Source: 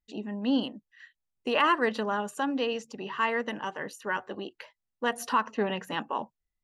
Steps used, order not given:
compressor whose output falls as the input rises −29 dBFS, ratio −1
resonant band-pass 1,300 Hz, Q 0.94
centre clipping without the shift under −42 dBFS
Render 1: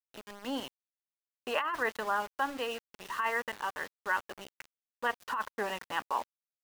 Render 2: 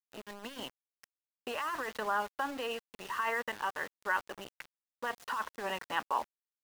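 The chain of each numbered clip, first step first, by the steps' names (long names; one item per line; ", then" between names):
resonant band-pass, then centre clipping without the shift, then compressor whose output falls as the input rises
compressor whose output falls as the input rises, then resonant band-pass, then centre clipping without the shift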